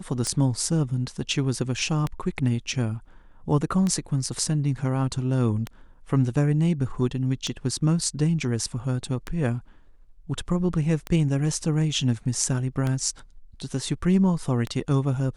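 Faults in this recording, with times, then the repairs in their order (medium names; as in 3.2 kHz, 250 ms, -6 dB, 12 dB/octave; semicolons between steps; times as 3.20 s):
tick 33 1/3 rpm -14 dBFS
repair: de-click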